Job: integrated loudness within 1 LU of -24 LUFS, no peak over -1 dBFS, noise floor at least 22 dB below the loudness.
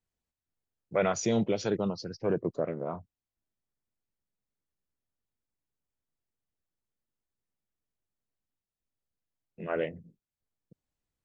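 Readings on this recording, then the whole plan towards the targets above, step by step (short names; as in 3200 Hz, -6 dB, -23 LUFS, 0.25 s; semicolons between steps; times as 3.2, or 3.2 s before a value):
loudness -31.5 LUFS; peak -15.5 dBFS; loudness target -24.0 LUFS
-> gain +7.5 dB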